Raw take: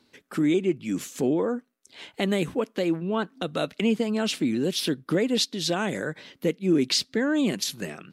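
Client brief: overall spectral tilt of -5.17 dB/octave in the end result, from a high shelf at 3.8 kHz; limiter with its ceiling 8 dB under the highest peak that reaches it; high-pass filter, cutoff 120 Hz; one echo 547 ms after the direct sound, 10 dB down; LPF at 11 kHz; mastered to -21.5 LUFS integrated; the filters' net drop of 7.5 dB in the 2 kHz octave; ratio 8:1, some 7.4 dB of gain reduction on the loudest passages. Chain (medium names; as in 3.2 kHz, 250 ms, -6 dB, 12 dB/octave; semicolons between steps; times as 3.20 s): high-pass 120 Hz; low-pass 11 kHz; peaking EQ 2 kHz -8 dB; treble shelf 3.8 kHz -8.5 dB; compression 8:1, threshold -26 dBFS; peak limiter -25 dBFS; delay 547 ms -10 dB; trim +13 dB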